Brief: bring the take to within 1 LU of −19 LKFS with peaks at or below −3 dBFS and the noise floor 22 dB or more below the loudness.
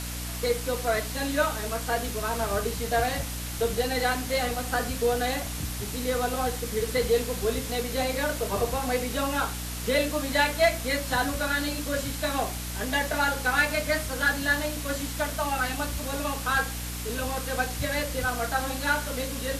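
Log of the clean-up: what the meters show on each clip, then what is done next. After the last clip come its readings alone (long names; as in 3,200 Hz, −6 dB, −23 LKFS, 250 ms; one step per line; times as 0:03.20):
mains hum 60 Hz; hum harmonics up to 300 Hz; level of the hum −34 dBFS; background noise floor −34 dBFS; target noise floor −50 dBFS; integrated loudness −27.5 LKFS; sample peak −11.0 dBFS; target loudness −19.0 LKFS
→ hum removal 60 Hz, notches 5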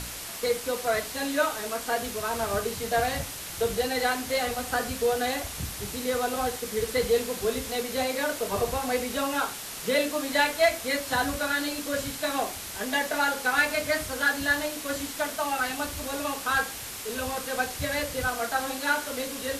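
mains hum none found; background noise floor −38 dBFS; target noise floor −50 dBFS
→ broadband denoise 12 dB, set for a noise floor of −38 dBFS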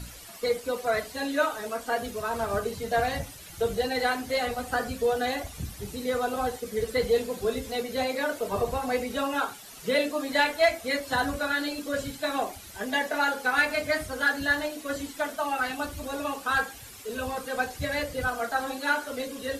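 background noise floor −45 dBFS; target noise floor −51 dBFS
→ broadband denoise 6 dB, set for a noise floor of −45 dBFS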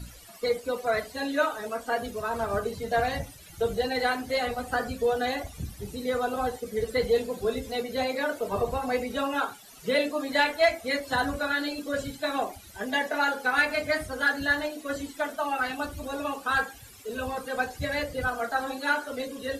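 background noise floor −48 dBFS; target noise floor −51 dBFS
→ broadband denoise 6 dB, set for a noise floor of −48 dBFS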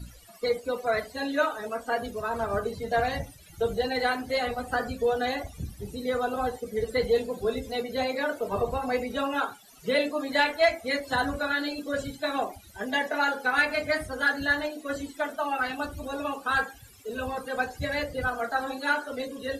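background noise floor −51 dBFS; integrated loudness −28.5 LKFS; sample peak −11.5 dBFS; target loudness −19.0 LKFS
→ level +9.5 dB
brickwall limiter −3 dBFS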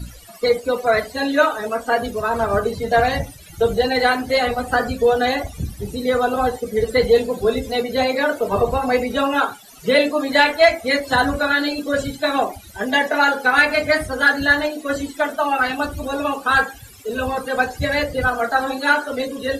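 integrated loudness −19.0 LKFS; sample peak −3.0 dBFS; background noise floor −41 dBFS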